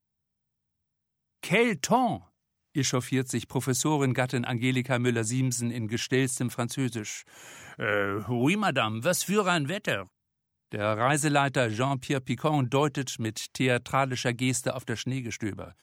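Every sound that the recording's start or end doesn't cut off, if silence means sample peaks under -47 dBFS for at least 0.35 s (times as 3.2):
1.43–2.23
2.75–10.06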